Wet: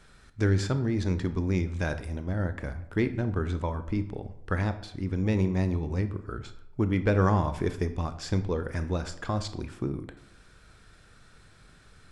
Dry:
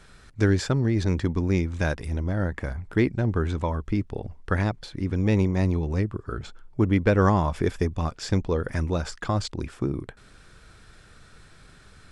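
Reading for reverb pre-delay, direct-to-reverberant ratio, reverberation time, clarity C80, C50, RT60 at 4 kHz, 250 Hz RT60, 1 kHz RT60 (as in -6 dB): 21 ms, 10.0 dB, 0.80 s, 16.0 dB, 13.0 dB, 0.45 s, 0.80 s, 0.80 s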